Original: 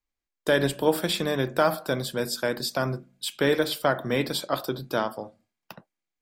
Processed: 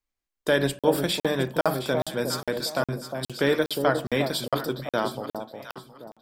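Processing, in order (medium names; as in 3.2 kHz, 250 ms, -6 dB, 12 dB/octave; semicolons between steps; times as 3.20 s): echo whose repeats swap between lows and highs 358 ms, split 900 Hz, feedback 51%, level -5 dB; crackling interface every 0.41 s, samples 2048, zero, from 0.79 s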